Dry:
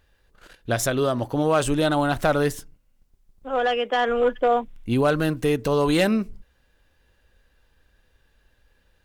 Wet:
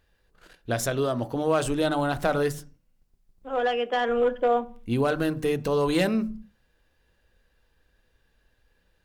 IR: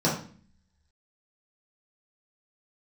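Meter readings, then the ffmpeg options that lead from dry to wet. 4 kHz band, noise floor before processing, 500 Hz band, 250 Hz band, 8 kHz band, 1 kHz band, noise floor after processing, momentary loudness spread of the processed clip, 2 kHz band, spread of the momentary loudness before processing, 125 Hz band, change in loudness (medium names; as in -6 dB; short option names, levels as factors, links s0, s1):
-4.5 dB, -65 dBFS, -2.5 dB, -3.5 dB, -4.5 dB, -3.5 dB, -69 dBFS, 8 LU, -4.0 dB, 6 LU, -4.0 dB, -3.5 dB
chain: -filter_complex "[0:a]asplit=2[s0][s1];[1:a]atrim=start_sample=2205,afade=t=out:st=0.33:d=0.01,atrim=end_sample=14994[s2];[s1][s2]afir=irnorm=-1:irlink=0,volume=0.0447[s3];[s0][s3]amix=inputs=2:normalize=0,volume=0.596"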